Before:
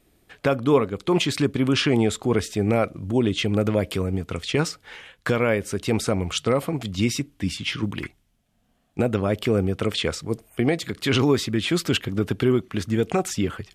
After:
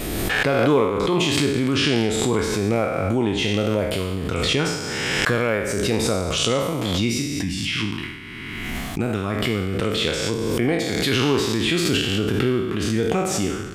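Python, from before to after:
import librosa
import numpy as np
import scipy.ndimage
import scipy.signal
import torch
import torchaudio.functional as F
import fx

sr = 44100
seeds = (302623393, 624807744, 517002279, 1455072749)

y = fx.spec_trails(x, sr, decay_s=1.05)
y = fx.peak_eq(y, sr, hz=550.0, db=-10.0, octaves=0.63, at=(7.44, 9.74))
y = fx.pre_swell(y, sr, db_per_s=21.0)
y = y * 10.0 ** (-2.5 / 20.0)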